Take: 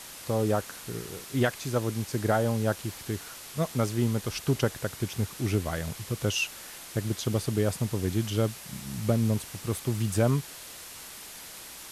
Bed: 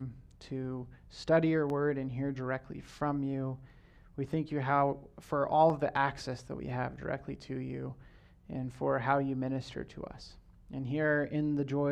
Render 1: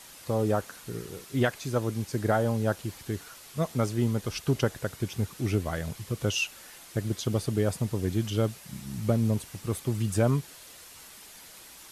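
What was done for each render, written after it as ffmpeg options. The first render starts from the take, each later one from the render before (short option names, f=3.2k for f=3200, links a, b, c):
-af "afftdn=nr=6:nf=-44"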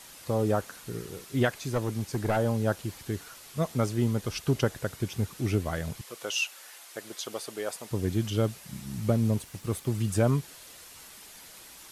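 -filter_complex "[0:a]asettb=1/sr,asplit=3[a][b][c];[a]atrim=end=1.584[d];[b]atrim=start=1.58:end=2.37,asetpts=PTS-STARTPTS,afade=t=in:d=0.004:c=qsin,afade=t=out:st=0.786:d=0.004:c=qsin,aeval=exprs='clip(val(0),-1,0.0708)':c=same[e];[c]atrim=start=2.366[f];[d][e]acrossfade=d=0.004:c1=hsin:c2=qsin[g];[g][f]acrossfade=d=0.004:c1=qsin:c2=hsin,asettb=1/sr,asplit=3[h][i][j];[h]atrim=end=6.014[k];[i]atrim=start=6.01:end=7.91,asetpts=PTS-STARTPTS,afade=t=in:d=0.004:c=qsin,afade=t=out:st=1.896:d=0.004:c=qsin,highpass=570[l];[j]atrim=start=7.906[m];[k][l]acrossfade=d=0.004:c1=hsin:c2=qsin[n];[n][m]acrossfade=d=0.004:c1=qsin:c2=hsin,asettb=1/sr,asplit=3[o][p][q];[o]atrim=end=9.364[r];[p]atrim=start=9.36:end=10.03,asetpts=PTS-STARTPTS,afade=t=in:d=0.004:c=qsin,afade=t=out:st=0.666:d=0.004:c=qsin,aeval=exprs='sgn(val(0))*max(abs(val(0))-0.00119,0)':c=same[s];[q]atrim=start=10.026[t];[r][s]acrossfade=d=0.004:c1=hsin:c2=qsin[u];[u][t]acrossfade=d=0.004:c1=qsin:c2=hsin"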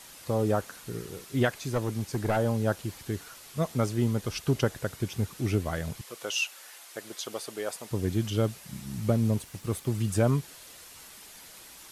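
-af anull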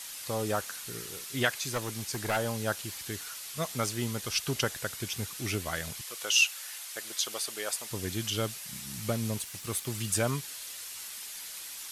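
-af "tiltshelf=f=1.1k:g=-8"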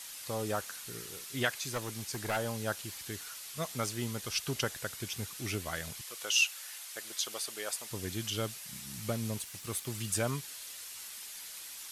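-af "volume=-3.5dB"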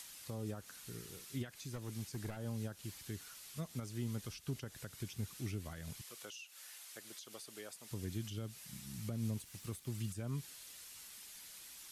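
-filter_complex "[0:a]alimiter=level_in=2dB:limit=-24dB:level=0:latency=1:release=159,volume=-2dB,acrossover=split=310[a][b];[b]acompressor=threshold=-52dB:ratio=4[c];[a][c]amix=inputs=2:normalize=0"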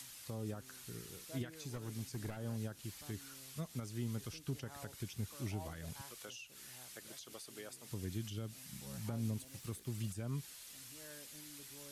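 -filter_complex "[1:a]volume=-27dB[a];[0:a][a]amix=inputs=2:normalize=0"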